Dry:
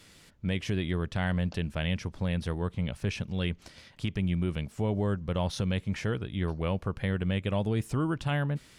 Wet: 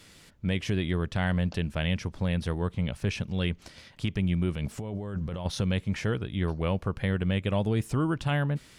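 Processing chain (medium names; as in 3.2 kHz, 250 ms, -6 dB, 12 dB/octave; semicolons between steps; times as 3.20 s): 4.56–5.46 s: compressor with a negative ratio -35 dBFS, ratio -1; trim +2 dB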